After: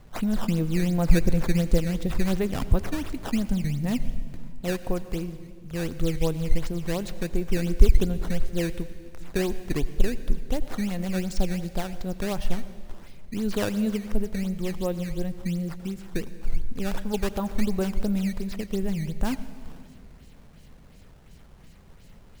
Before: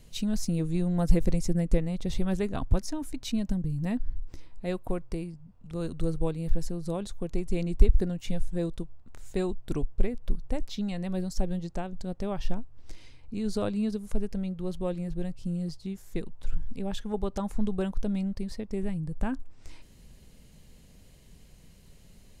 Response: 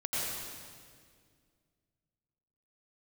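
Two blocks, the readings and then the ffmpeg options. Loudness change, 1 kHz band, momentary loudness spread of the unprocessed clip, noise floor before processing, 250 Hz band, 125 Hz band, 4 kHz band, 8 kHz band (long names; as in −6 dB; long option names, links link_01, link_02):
+3.5 dB, +3.5 dB, 11 LU, −54 dBFS, +3.5 dB, +3.5 dB, +5.0 dB, +5.0 dB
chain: -filter_complex "[0:a]acrusher=samples=12:mix=1:aa=0.000001:lfo=1:lforange=19.2:lforate=2.8,asplit=2[link_01][link_02];[1:a]atrim=start_sample=2205[link_03];[link_02][link_03]afir=irnorm=-1:irlink=0,volume=-18.5dB[link_04];[link_01][link_04]amix=inputs=2:normalize=0,volume=2.5dB"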